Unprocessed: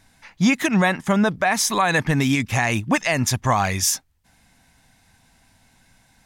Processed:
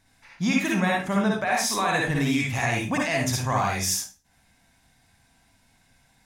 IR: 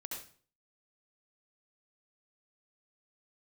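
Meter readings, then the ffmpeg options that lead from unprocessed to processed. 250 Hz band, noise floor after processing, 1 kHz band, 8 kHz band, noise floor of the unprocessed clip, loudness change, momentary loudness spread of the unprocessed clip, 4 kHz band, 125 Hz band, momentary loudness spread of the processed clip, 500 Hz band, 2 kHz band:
-4.5 dB, -63 dBFS, -4.0 dB, -4.5 dB, -60 dBFS, -4.0 dB, 3 LU, -3.5 dB, -4.5 dB, 2 LU, -4.0 dB, -4.0 dB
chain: -filter_complex "[1:a]atrim=start_sample=2205,asetrate=57330,aresample=44100[a];[0:a][a]afir=irnorm=-1:irlink=0"

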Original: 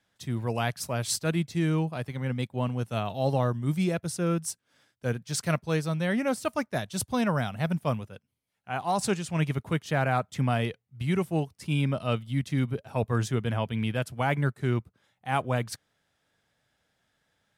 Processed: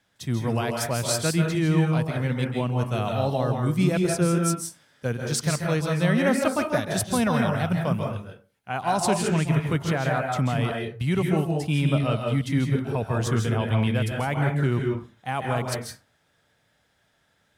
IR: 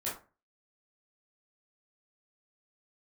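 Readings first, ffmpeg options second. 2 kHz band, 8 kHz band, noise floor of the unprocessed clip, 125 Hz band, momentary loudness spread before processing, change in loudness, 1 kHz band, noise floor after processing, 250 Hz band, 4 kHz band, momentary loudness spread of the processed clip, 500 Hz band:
+4.0 dB, +5.0 dB, -77 dBFS, +4.5 dB, 6 LU, +4.5 dB, +3.5 dB, -68 dBFS, +5.0 dB, +4.5 dB, 8 LU, +4.5 dB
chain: -filter_complex "[0:a]alimiter=limit=-19.5dB:level=0:latency=1:release=102,asplit=2[a][b];[1:a]atrim=start_sample=2205,adelay=135[c];[b][c]afir=irnorm=-1:irlink=0,volume=-4.5dB[d];[a][d]amix=inputs=2:normalize=0,volume=4.5dB"

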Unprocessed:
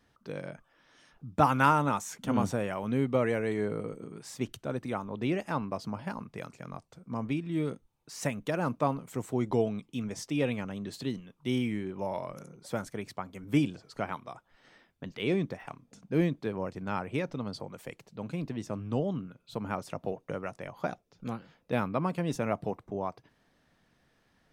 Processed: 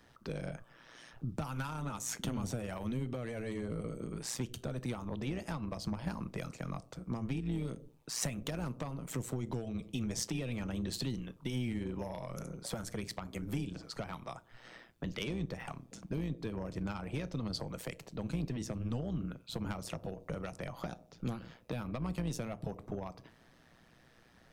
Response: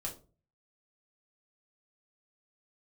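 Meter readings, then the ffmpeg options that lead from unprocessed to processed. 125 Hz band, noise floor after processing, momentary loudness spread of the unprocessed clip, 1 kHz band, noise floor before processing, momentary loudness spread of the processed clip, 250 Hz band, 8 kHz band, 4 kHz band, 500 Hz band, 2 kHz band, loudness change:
-3.0 dB, -63 dBFS, 15 LU, -13.5 dB, -71 dBFS, 7 LU, -6.0 dB, +3.5 dB, 0.0 dB, -9.5 dB, -8.5 dB, -7.0 dB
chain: -filter_complex "[0:a]asplit=2[a][b];[1:a]atrim=start_sample=2205[c];[b][c]afir=irnorm=-1:irlink=0,volume=-14dB[d];[a][d]amix=inputs=2:normalize=0,acompressor=threshold=-32dB:ratio=6,tremolo=f=120:d=0.71,asoftclip=type=tanh:threshold=-30dB,acrossover=split=190|3000[e][f][g];[f]acompressor=threshold=-48dB:ratio=6[h];[e][h][g]amix=inputs=3:normalize=0,volume=8dB"

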